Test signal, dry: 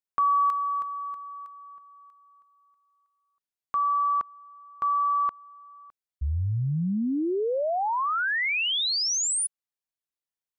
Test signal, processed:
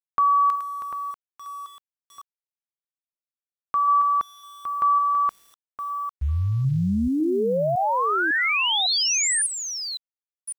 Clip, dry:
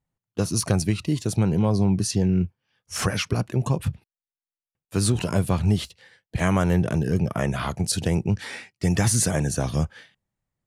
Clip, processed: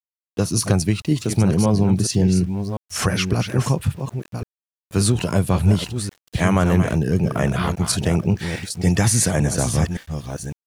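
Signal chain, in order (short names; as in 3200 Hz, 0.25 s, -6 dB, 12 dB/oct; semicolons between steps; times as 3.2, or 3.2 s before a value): reverse delay 0.554 s, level -8 dB; sample gate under -46.5 dBFS; gain +3.5 dB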